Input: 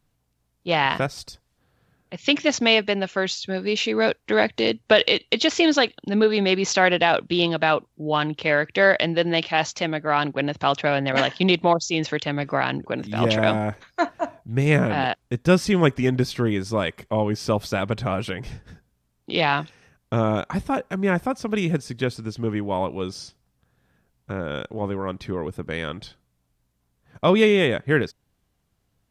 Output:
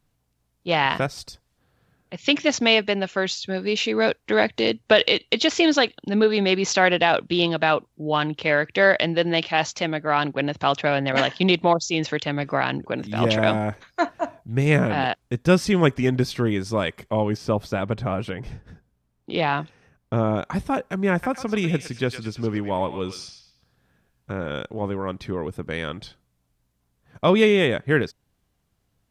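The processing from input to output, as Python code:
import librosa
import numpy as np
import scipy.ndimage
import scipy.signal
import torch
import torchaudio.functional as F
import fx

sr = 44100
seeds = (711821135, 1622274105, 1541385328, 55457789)

y = fx.high_shelf(x, sr, hz=2100.0, db=-8.0, at=(17.37, 20.42))
y = fx.echo_banded(y, sr, ms=111, feedback_pct=40, hz=2800.0, wet_db=-5.5, at=(21.12, 24.52))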